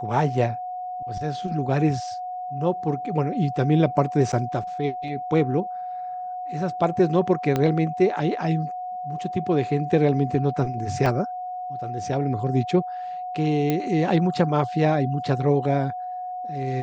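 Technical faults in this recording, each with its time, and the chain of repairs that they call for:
whine 730 Hz -29 dBFS
4.32–4.33 s: dropout 8.1 ms
7.56 s: pop -10 dBFS
11.06 s: dropout 2.5 ms
13.70 s: pop -10 dBFS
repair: de-click; band-stop 730 Hz, Q 30; interpolate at 4.32 s, 8.1 ms; interpolate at 11.06 s, 2.5 ms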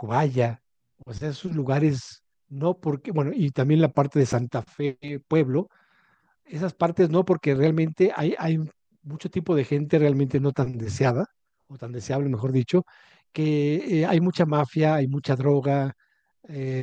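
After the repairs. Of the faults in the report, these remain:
7.56 s: pop

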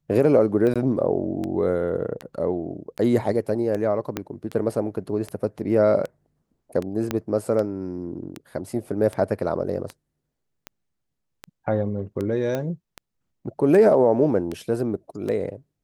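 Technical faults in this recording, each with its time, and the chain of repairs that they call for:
tick 78 rpm -17 dBFS
0.74–0.76 s: dropout 16 ms
4.17 s: pop -11 dBFS
7.11 s: pop -10 dBFS
12.55 s: pop -14 dBFS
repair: de-click; interpolate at 0.74 s, 16 ms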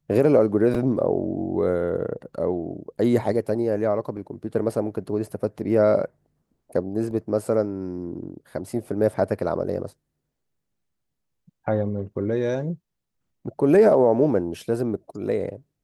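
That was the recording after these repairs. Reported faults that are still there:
4.17 s: pop
7.11 s: pop

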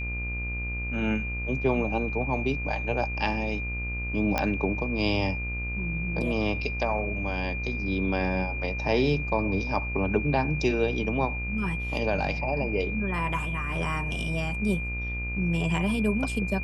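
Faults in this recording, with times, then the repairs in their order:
buzz 60 Hz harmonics 39 -33 dBFS
whine 2.4 kHz -33 dBFS
4.38 s: pop -11 dBFS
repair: de-click; band-stop 2.4 kHz, Q 30; de-hum 60 Hz, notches 39

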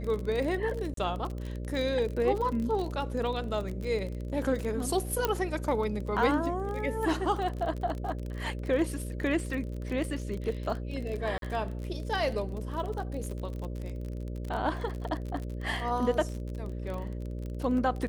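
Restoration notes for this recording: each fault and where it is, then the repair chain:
buzz 60 Hz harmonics 10 -36 dBFS
crackle 39 per s -34 dBFS
0.94–0.97 s: dropout 33 ms
5.25 s: pop -12 dBFS
11.38–11.42 s: dropout 42 ms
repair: de-click; de-hum 60 Hz, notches 10; interpolate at 0.94 s, 33 ms; interpolate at 11.38 s, 42 ms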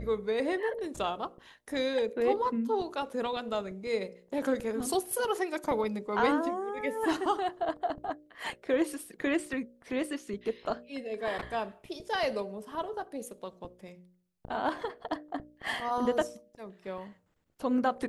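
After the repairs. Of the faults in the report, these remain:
nothing left

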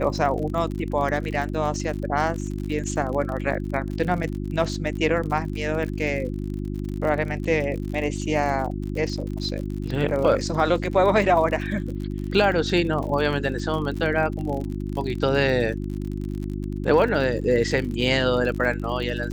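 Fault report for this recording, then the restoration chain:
crackle 46 per s -30 dBFS
hum 50 Hz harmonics 7 -29 dBFS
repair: de-click; de-hum 50 Hz, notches 7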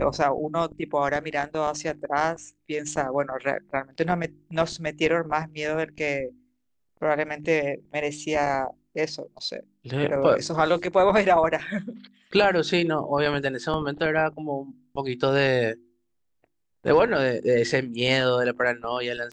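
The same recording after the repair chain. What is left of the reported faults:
nothing left

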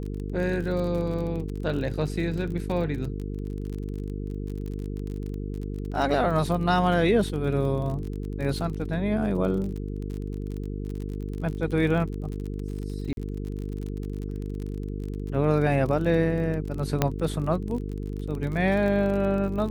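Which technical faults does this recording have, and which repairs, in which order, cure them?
buzz 50 Hz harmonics 9 -32 dBFS
crackle 38 per s -32 dBFS
13.13–13.17 s: dropout 40 ms
17.02 s: pop -7 dBFS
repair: de-click; de-hum 50 Hz, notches 9; interpolate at 13.13 s, 40 ms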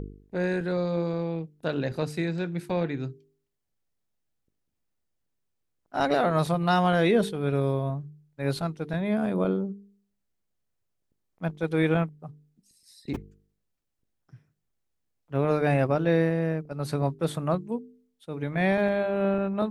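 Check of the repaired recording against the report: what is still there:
nothing left

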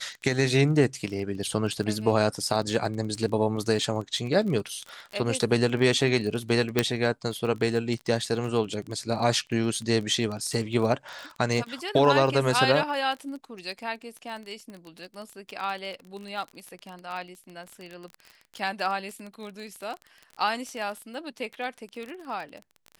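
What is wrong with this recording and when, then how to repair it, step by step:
crackle 22 per s -32 dBFS
6.79 s: pop -6 dBFS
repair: de-click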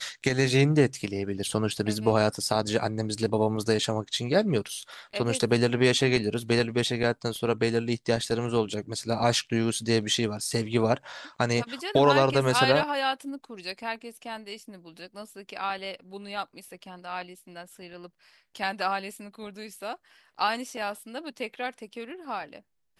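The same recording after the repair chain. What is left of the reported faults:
nothing left

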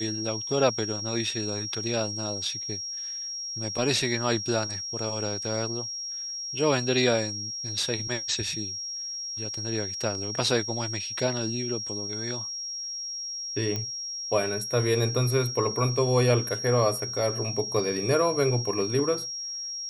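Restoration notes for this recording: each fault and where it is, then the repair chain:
whine 5.6 kHz -32 dBFS
13.76 s: pop -16 dBFS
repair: de-click; band-stop 5.6 kHz, Q 30

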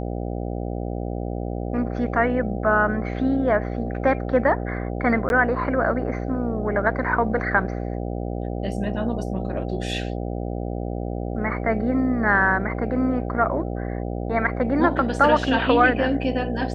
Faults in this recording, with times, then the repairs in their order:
buzz 60 Hz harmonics 13 -28 dBFS
5.29–5.30 s: dropout 11 ms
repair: de-hum 60 Hz, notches 13; interpolate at 5.29 s, 11 ms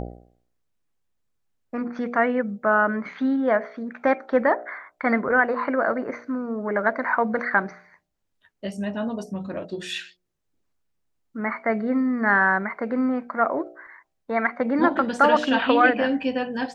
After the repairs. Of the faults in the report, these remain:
nothing left

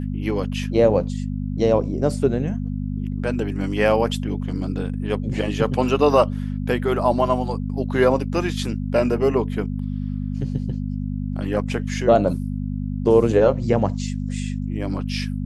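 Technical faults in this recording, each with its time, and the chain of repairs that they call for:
hum 50 Hz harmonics 5 -26 dBFS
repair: de-hum 50 Hz, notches 5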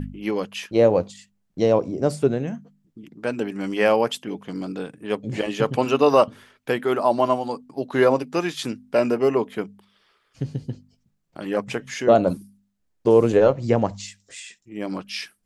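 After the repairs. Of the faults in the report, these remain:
nothing left

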